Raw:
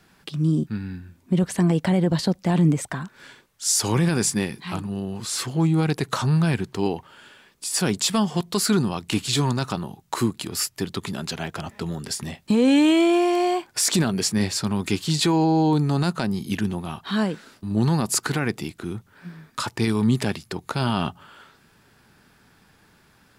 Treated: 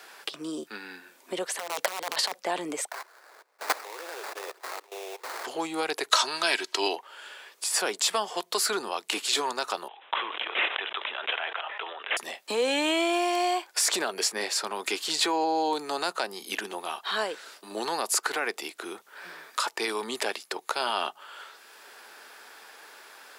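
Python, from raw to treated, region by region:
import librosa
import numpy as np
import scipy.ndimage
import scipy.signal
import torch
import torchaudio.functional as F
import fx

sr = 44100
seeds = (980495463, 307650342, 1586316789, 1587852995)

y = fx.chain(x, sr, fx.low_shelf(hz=420.0, db=-2.5),
    fx.overflow_wrap(gain_db=15.5),
    fx.over_compress(threshold_db=-27.0, ratio=-0.5), at=(1.57, 2.4))
y = fx.chain(y, sr, fx.steep_highpass(hz=360.0, slope=48),
    fx.level_steps(step_db=20),
    fx.sample_hold(seeds[0], rate_hz=3100.0, jitter_pct=20), at=(2.91, 5.45))
y = fx.chain(y, sr, fx.peak_eq(hz=4600.0, db=13.0, octaves=2.4),
    fx.comb(ms=3.1, depth=0.48), at=(6.11, 6.96))
y = fx.chain(y, sr, fx.highpass(hz=850.0, slope=12),
    fx.resample_bad(factor=6, down='none', up='filtered'),
    fx.sustainer(db_per_s=49.0), at=(9.88, 12.17))
y = scipy.signal.sosfilt(scipy.signal.butter(4, 450.0, 'highpass', fs=sr, output='sos'), y)
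y = fx.band_squash(y, sr, depth_pct=40)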